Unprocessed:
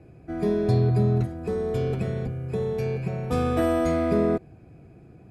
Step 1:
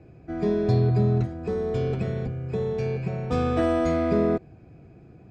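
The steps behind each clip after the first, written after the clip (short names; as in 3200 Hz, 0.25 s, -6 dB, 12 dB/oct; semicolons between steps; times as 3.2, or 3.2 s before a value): LPF 7000 Hz 24 dB/oct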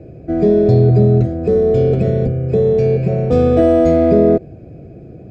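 resonant low shelf 740 Hz +7 dB, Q 3; in parallel at +2 dB: limiter -13 dBFS, peak gain reduction 10.5 dB; on the sum: gain -1.5 dB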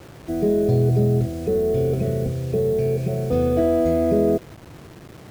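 requantised 6-bit, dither none; gain -7.5 dB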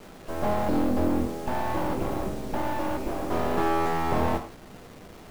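full-wave rectifier; non-linear reverb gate 0.16 s falling, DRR 4.5 dB; gain -3.5 dB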